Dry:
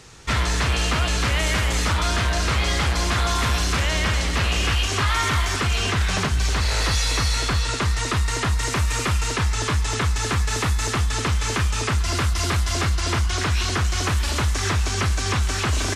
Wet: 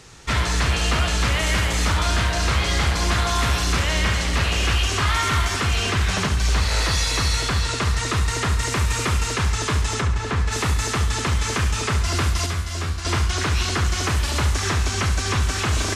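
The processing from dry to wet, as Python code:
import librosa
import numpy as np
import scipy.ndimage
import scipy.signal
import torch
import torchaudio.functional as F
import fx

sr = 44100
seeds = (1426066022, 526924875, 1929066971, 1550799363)

y = fx.lowpass(x, sr, hz=fx.line((10.0, 1300.0), (10.51, 2900.0)), slope=6, at=(10.0, 10.51), fade=0.02)
y = fx.comb_fb(y, sr, f0_hz=82.0, decay_s=0.25, harmonics='all', damping=0.0, mix_pct=80, at=(12.46, 13.05))
y = fx.echo_feedback(y, sr, ms=69, feedback_pct=42, wet_db=-9)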